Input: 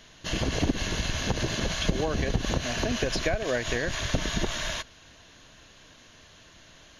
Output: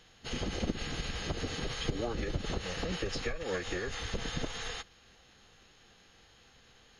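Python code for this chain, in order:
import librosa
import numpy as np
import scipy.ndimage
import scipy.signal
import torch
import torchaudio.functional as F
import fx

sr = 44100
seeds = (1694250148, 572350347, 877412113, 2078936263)

y = fx.pitch_keep_formants(x, sr, semitones=-5.0)
y = F.gain(torch.from_numpy(y), -6.5).numpy()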